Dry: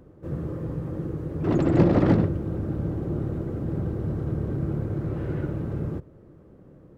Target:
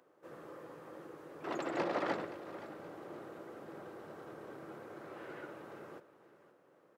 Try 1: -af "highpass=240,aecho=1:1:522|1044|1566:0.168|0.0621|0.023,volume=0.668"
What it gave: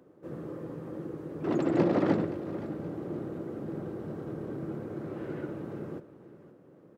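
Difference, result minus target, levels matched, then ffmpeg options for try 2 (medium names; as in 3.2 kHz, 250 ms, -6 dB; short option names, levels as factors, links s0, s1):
1 kHz band -8.0 dB
-af "highpass=760,aecho=1:1:522|1044|1566:0.168|0.0621|0.023,volume=0.668"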